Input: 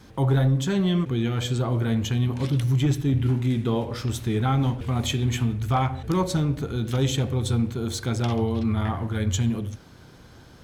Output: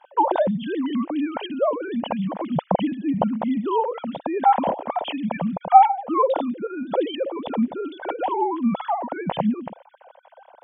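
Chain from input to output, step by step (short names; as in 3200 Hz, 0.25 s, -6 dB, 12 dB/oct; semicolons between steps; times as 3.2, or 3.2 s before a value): sine-wave speech; band shelf 710 Hz +15 dB 1.2 oct; gain -3.5 dB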